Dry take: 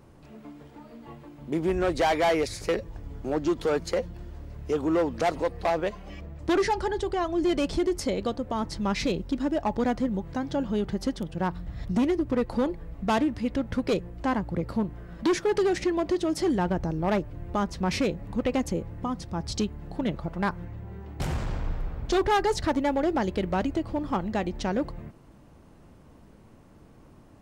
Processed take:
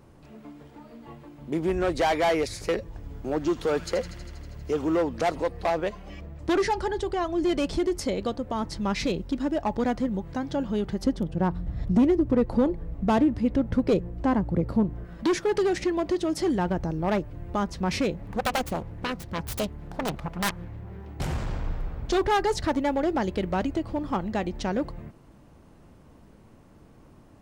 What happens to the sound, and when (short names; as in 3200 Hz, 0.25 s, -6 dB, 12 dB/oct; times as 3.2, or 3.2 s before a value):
2.89–4.97 thin delay 80 ms, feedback 77%, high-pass 1800 Hz, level -9.5 dB
11.04–15.05 tilt shelf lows +5 dB, about 940 Hz
18.15–21.09 self-modulated delay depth 0.98 ms